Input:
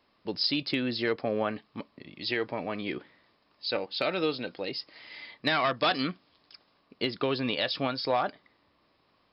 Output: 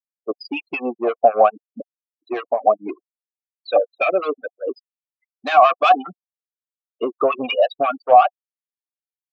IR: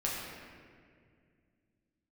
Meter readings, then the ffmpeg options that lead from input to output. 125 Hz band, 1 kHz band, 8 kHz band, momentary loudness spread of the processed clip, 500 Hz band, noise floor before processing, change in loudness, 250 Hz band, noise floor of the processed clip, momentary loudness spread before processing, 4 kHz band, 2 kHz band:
under -10 dB, +17.0 dB, n/a, 16 LU, +12.5 dB, -69 dBFS, +11.5 dB, +2.0 dB, under -85 dBFS, 14 LU, -3.0 dB, +5.0 dB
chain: -filter_complex "[0:a]aeval=exprs='val(0)*gte(abs(val(0)),0.00355)':c=same,acrossover=split=3000[a][b];[b]acompressor=threshold=-42dB:ratio=4:attack=1:release=60[c];[a][c]amix=inputs=2:normalize=0,highpass=f=210:p=1,acontrast=51,afftfilt=real='re*gte(hypot(re,im),0.141)':imag='im*gte(hypot(re,im),0.141)':win_size=1024:overlap=0.75,asoftclip=type=tanh:threshold=-21.5dB,afftfilt=real='re*gte(hypot(re,im),0.00316)':imag='im*gte(hypot(re,im),0.00316)':win_size=1024:overlap=0.75,asplit=3[d][e][f];[d]bandpass=f=730:t=q:w=8,volume=0dB[g];[e]bandpass=f=1.09k:t=q:w=8,volume=-6dB[h];[f]bandpass=f=2.44k:t=q:w=8,volume=-9dB[i];[g][h][i]amix=inputs=3:normalize=0,acrossover=split=1100[j][k];[j]aeval=exprs='val(0)*(1-1/2+1/2*cos(2*PI*5.5*n/s))':c=same[l];[k]aeval=exprs='val(0)*(1-1/2-1/2*cos(2*PI*5.5*n/s))':c=same[m];[l][m]amix=inputs=2:normalize=0,alimiter=level_in=28dB:limit=-1dB:release=50:level=0:latency=1,volume=-1dB"

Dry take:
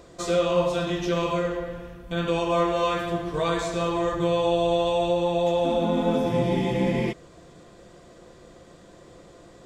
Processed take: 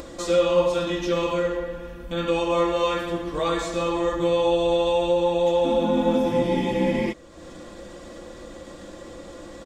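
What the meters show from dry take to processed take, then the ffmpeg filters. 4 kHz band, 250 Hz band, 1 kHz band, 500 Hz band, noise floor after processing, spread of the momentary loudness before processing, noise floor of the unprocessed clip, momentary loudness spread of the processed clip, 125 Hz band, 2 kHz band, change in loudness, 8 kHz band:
+1.5 dB, +1.5 dB, +0.5 dB, +2.5 dB, -42 dBFS, 7 LU, -50 dBFS, 20 LU, -3.5 dB, +1.0 dB, +1.5 dB, +1.5 dB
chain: -af "acompressor=mode=upward:threshold=-32dB:ratio=2.5,aecho=1:1:3.6:0.59"

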